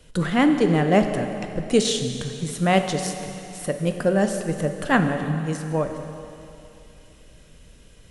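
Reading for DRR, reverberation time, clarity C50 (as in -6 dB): 6.0 dB, 2.9 s, 7.0 dB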